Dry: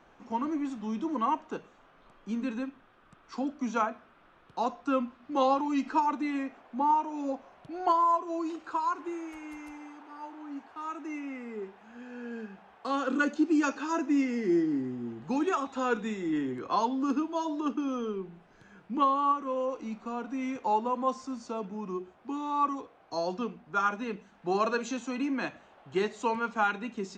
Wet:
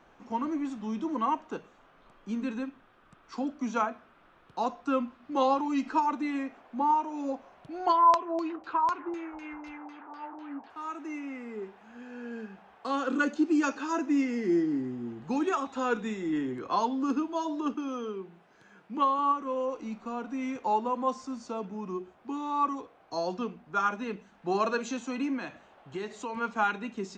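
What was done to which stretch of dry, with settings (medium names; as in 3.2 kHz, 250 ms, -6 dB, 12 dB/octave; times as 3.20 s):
7.89–10.70 s: LFO low-pass saw down 4 Hz 680–5400 Hz
17.74–19.19 s: high-pass 290 Hz 6 dB/octave
25.37–26.37 s: compression 3:1, threshold -34 dBFS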